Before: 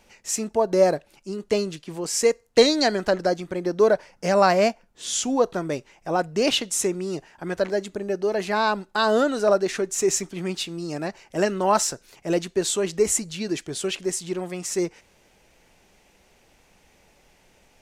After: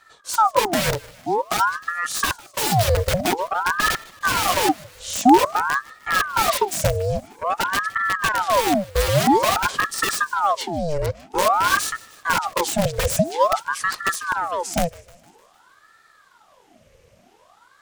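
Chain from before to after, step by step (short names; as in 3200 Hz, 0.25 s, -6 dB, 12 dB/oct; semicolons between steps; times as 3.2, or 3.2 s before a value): wrapped overs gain 17.5 dB; HPF 140 Hz; resonant low shelf 340 Hz +10 dB, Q 3; on a send: thinning echo 0.153 s, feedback 61%, high-pass 190 Hz, level -21.5 dB; on the sum: ring modulator with a swept carrier 920 Hz, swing 70%, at 0.5 Hz; gain +2 dB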